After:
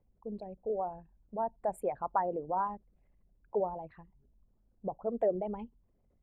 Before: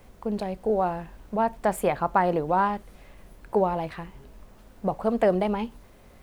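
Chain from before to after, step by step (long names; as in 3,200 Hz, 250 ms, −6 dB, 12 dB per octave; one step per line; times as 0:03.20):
spectral envelope exaggerated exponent 2
expander for the loud parts 1.5 to 1, over −41 dBFS
level −7.5 dB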